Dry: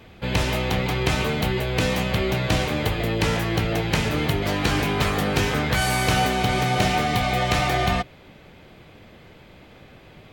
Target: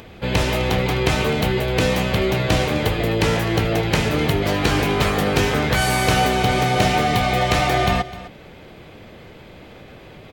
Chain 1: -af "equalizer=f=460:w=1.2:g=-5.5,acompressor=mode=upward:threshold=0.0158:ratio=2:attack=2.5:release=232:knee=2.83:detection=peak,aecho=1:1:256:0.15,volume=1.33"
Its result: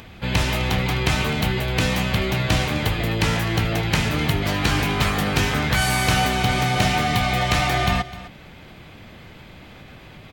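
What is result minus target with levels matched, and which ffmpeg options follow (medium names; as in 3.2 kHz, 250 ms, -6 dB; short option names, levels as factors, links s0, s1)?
500 Hz band -5.0 dB
-af "equalizer=f=460:w=1.2:g=3,acompressor=mode=upward:threshold=0.0158:ratio=2:attack=2.5:release=232:knee=2.83:detection=peak,aecho=1:1:256:0.15,volume=1.33"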